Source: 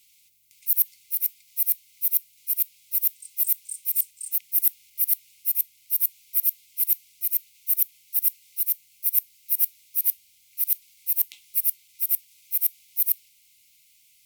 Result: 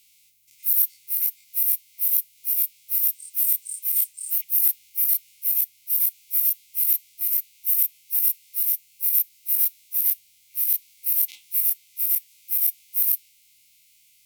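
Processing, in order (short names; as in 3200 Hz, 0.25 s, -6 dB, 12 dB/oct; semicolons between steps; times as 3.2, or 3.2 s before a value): spectral dilation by 60 ms; gain -3 dB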